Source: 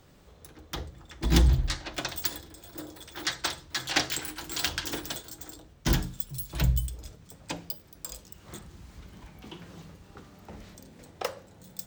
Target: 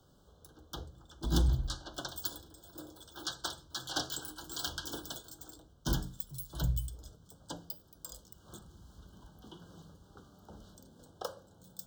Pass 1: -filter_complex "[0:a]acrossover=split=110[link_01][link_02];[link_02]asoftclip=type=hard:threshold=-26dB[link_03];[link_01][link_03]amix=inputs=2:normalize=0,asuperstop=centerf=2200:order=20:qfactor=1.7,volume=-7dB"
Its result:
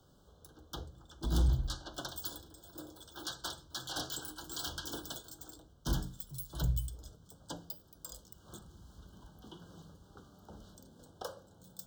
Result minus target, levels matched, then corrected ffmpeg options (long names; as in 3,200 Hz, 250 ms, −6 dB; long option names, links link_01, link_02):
hard clipping: distortion +14 dB
-filter_complex "[0:a]acrossover=split=110[link_01][link_02];[link_02]asoftclip=type=hard:threshold=-15.5dB[link_03];[link_01][link_03]amix=inputs=2:normalize=0,asuperstop=centerf=2200:order=20:qfactor=1.7,volume=-7dB"